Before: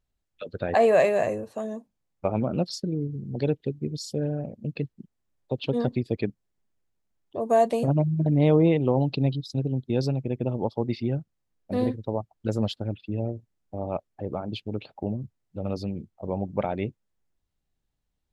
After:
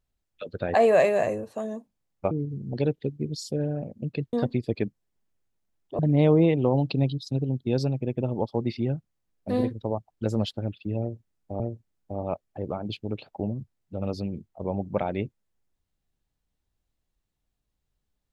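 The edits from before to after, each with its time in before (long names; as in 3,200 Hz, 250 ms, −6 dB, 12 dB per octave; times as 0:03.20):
0:02.31–0:02.93: remove
0:04.95–0:05.75: remove
0:07.41–0:08.22: remove
0:13.23–0:13.83: repeat, 2 plays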